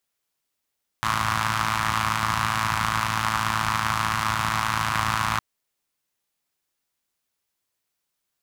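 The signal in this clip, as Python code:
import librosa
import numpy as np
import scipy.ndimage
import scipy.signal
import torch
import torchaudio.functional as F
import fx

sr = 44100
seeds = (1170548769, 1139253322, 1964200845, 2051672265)

y = fx.engine_four(sr, seeds[0], length_s=4.36, rpm=3300, resonances_hz=(81.0, 130.0, 1100.0))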